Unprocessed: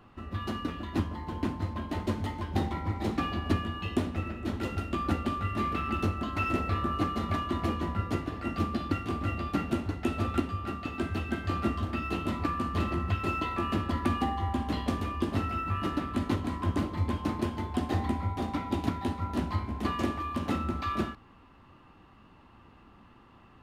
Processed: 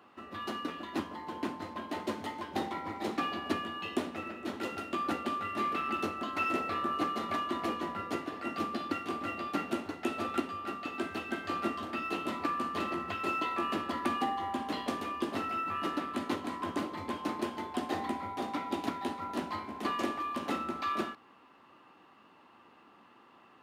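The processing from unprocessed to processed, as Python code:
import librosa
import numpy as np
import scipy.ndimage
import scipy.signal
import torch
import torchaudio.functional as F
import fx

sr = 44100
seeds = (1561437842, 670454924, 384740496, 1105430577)

y = scipy.signal.sosfilt(scipy.signal.butter(2, 320.0, 'highpass', fs=sr, output='sos'), x)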